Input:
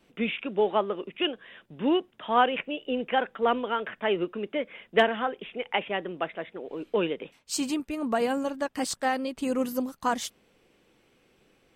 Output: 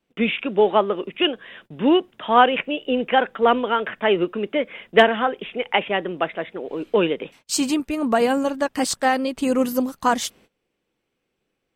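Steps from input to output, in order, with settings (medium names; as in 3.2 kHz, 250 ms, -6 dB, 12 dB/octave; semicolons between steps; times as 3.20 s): gate -56 dBFS, range -20 dB; trim +7.5 dB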